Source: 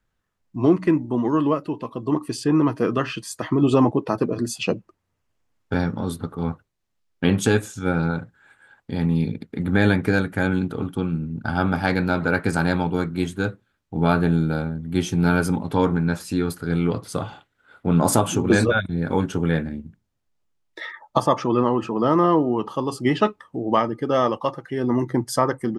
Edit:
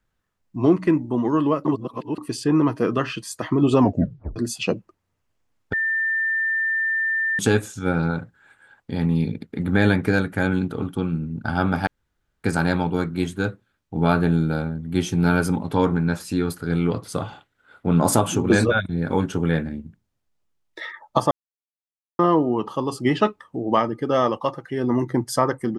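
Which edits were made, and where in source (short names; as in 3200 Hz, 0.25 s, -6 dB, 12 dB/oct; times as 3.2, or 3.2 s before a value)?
1.65–2.18 reverse
3.8 tape stop 0.56 s
5.73–7.39 bleep 1790 Hz -19.5 dBFS
11.87–12.44 room tone
21.31–22.19 mute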